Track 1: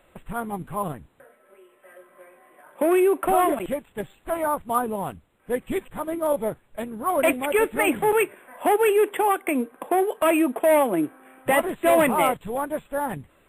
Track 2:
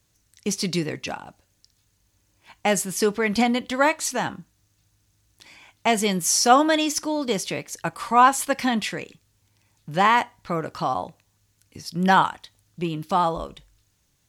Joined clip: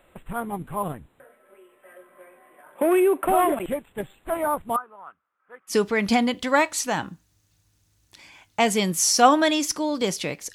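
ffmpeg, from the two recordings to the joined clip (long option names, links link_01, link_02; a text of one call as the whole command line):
ffmpeg -i cue0.wav -i cue1.wav -filter_complex "[0:a]asettb=1/sr,asplit=3[link_01][link_02][link_03];[link_01]atrim=end=4.764[link_04];[link_02]atrim=start=4.76:end=5.75,asetpts=PTS-STARTPTS,afade=type=in:duration=0.004:curve=qsin,afade=type=out:start_time=0.986:duration=0.004:curve=qsin,bandpass=frequency=1300:width_type=q:width=5.5:csg=0[link_05];[link_03]atrim=start=5.746[link_06];[link_04][link_05]acrossfade=duration=0.004:curve1=hsin:curve2=qsin[link_07];[link_07][link_06]acrossfade=duration=0.004:curve1=qsin:curve2=hsin,apad=whole_dur=10.54,atrim=end=10.54,atrim=end=5.75,asetpts=PTS-STARTPTS[link_08];[1:a]atrim=start=2.94:end=7.81,asetpts=PTS-STARTPTS[link_09];[link_08][link_09]acrossfade=duration=0.08:curve1=tri:curve2=tri" out.wav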